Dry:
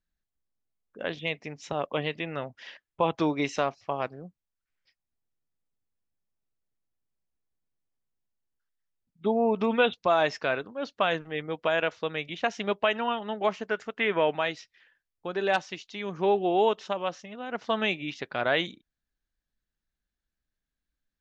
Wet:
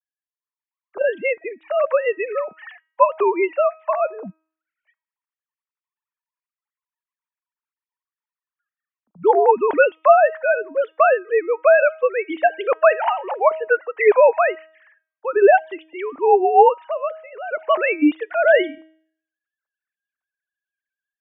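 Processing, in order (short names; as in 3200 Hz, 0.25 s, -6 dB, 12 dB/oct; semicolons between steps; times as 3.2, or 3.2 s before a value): sine-wave speech; LPF 2000 Hz 12 dB/oct; de-hum 317.5 Hz, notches 37; AGC gain up to 14 dB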